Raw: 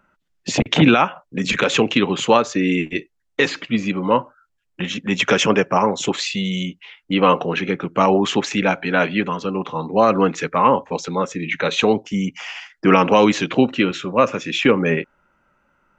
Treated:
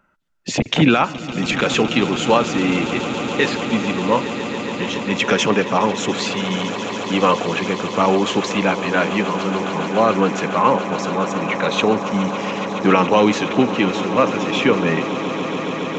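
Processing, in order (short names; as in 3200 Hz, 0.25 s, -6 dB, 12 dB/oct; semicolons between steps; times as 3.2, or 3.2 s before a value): swelling echo 0.14 s, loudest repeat 8, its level -15.5 dB; gain -1 dB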